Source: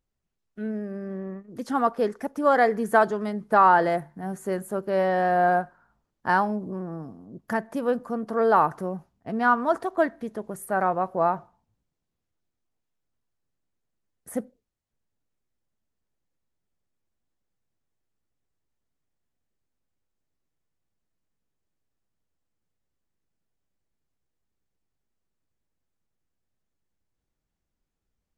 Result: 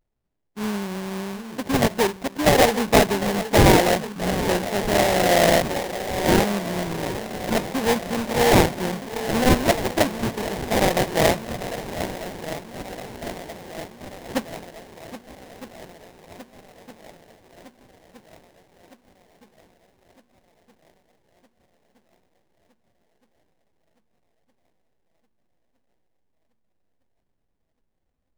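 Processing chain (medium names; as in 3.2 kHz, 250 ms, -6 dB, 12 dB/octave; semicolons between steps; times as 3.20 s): shuffle delay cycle 1264 ms, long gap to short 1.5:1, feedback 59%, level -12 dB; vibrato 0.86 Hz 81 cents; sample-rate reducer 1.3 kHz, jitter 20%; trim +3.5 dB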